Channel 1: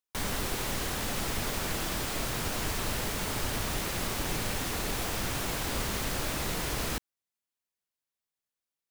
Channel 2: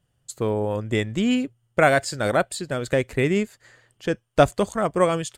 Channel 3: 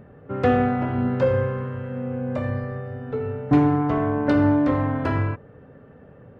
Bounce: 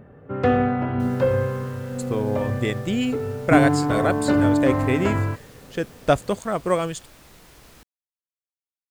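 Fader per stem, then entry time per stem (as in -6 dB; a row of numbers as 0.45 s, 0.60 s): -17.0 dB, -2.0 dB, 0.0 dB; 0.85 s, 1.70 s, 0.00 s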